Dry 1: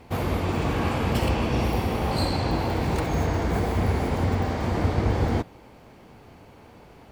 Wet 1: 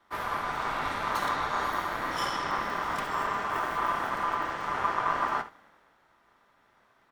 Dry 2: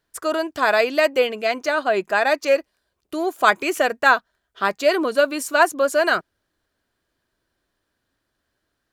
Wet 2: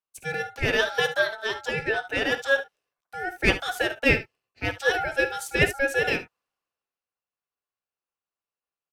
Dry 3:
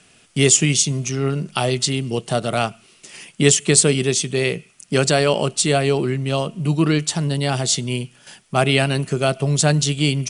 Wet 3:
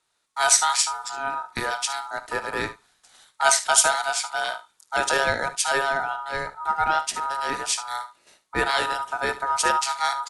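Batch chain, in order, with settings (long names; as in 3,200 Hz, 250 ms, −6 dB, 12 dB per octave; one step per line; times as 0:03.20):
ambience of single reflections 20 ms −16 dB, 56 ms −16 dB, 72 ms −14.5 dB
ring modulation 1,100 Hz
multiband upward and downward expander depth 40%
level −3.5 dB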